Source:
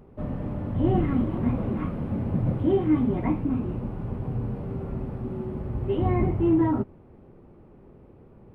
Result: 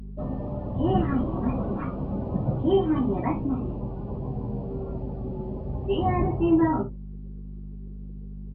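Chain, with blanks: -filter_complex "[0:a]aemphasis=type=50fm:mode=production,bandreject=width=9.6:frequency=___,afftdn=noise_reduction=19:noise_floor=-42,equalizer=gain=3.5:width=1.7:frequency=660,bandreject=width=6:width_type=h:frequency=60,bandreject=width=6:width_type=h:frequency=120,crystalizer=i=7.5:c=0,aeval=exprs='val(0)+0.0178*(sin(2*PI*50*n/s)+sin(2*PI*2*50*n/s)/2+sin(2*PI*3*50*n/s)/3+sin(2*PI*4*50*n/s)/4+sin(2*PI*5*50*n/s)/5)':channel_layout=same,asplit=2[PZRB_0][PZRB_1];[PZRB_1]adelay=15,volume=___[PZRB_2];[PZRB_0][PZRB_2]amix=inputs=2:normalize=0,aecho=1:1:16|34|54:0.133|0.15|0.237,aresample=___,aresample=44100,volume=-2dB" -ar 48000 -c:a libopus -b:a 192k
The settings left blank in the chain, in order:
2100, -7.5dB, 11025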